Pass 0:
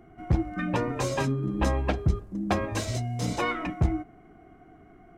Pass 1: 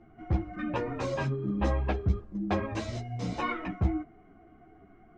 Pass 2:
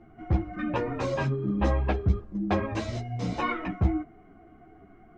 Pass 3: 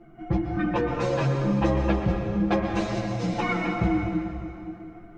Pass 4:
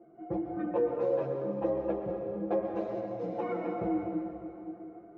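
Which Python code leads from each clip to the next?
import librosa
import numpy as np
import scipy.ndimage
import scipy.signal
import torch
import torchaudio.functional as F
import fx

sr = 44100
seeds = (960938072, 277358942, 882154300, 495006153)

y1 = fx.air_absorb(x, sr, metres=130.0)
y1 = fx.ensemble(y1, sr)
y2 = fx.high_shelf(y1, sr, hz=6600.0, db=-4.5)
y2 = y2 * librosa.db_to_amplitude(3.0)
y3 = y2 + 0.84 * np.pad(y2, (int(5.9 * sr / 1000.0), 0))[:len(y2)]
y3 = fx.rev_plate(y3, sr, seeds[0], rt60_s=2.7, hf_ratio=0.85, predelay_ms=105, drr_db=2.5)
y4 = fx.rider(y3, sr, range_db=5, speed_s=2.0)
y4 = fx.bandpass_q(y4, sr, hz=490.0, q=2.5)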